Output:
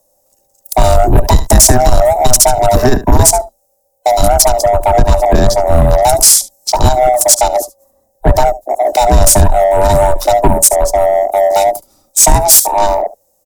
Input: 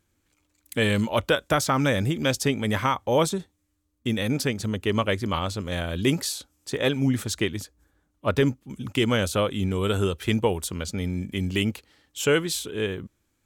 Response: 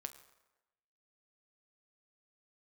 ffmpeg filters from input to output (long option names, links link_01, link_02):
-filter_complex "[0:a]afftfilt=real='real(if(lt(b,1008),b+24*(1-2*mod(floor(b/24),2)),b),0)':imag='imag(if(lt(b,1008),b+24*(1-2*mod(floor(b/24),2)),b),0)':win_size=2048:overlap=0.75,aemphasis=mode=production:type=50fm,afwtdn=0.0224,firequalizer=gain_entry='entry(250,0);entry(1500,-21);entry(2900,-27);entry(5400,-9)':delay=0.05:min_phase=1,asplit=2[link_01][link_02];[link_02]aecho=0:1:72:0.1[link_03];[link_01][link_03]amix=inputs=2:normalize=0,acrossover=split=120|250|510|4900[link_04][link_05][link_06][link_07][link_08];[link_04]acompressor=threshold=-32dB:ratio=4[link_09];[link_05]acompressor=threshold=-49dB:ratio=4[link_10];[link_06]acompressor=threshold=-50dB:ratio=4[link_11];[link_07]acompressor=threshold=-43dB:ratio=4[link_12];[link_09][link_10][link_11][link_12][link_08]amix=inputs=5:normalize=0,afreqshift=-25,apsyclip=28dB,acontrast=56,volume=-1dB"